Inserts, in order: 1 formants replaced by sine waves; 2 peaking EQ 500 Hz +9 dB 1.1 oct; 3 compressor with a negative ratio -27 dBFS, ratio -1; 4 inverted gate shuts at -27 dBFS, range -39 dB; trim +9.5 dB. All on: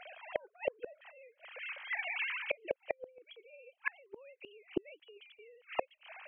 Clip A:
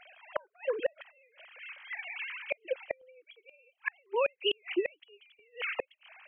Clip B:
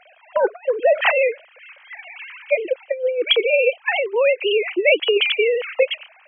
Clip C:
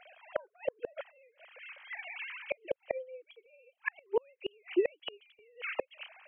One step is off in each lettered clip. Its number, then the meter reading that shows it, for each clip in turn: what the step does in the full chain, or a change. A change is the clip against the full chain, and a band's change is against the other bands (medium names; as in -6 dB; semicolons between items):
2, 2 kHz band -3.0 dB; 4, momentary loudness spread change -2 LU; 3, crest factor change -3.0 dB